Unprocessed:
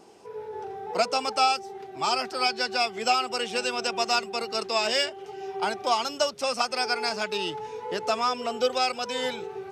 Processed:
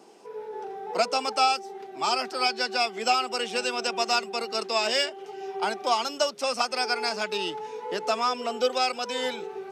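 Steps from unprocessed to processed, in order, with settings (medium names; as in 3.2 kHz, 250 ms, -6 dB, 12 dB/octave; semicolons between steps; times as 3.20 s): high-pass 180 Hz 24 dB/octave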